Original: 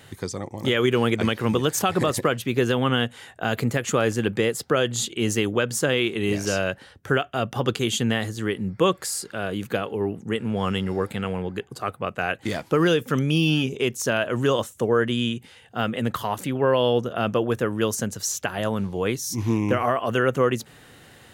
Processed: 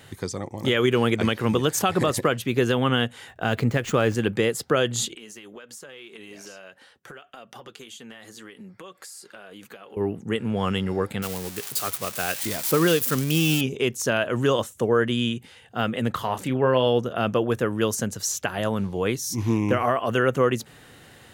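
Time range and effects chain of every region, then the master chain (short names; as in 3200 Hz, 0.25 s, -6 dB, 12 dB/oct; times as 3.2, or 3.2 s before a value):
3.28–4.15 median filter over 5 samples + low shelf 63 Hz +11 dB
5.15–9.97 HPF 540 Hz 6 dB/oct + compressor 10:1, threshold -34 dBFS + flange 1.8 Hz, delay 3.6 ms, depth 2.3 ms, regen -51%
11.22–13.61 switching spikes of -15.5 dBFS + upward expander, over -28 dBFS
16.12–16.87 high shelf 8200 Hz -6.5 dB + doubler 31 ms -10 dB
whole clip: dry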